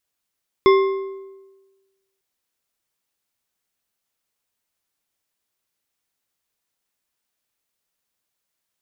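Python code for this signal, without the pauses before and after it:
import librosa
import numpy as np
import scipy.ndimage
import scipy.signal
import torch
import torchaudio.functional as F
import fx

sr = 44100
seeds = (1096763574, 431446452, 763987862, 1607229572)

y = fx.strike_metal(sr, length_s=1.55, level_db=-8.5, body='bar', hz=388.0, decay_s=1.26, tilt_db=6.5, modes=5)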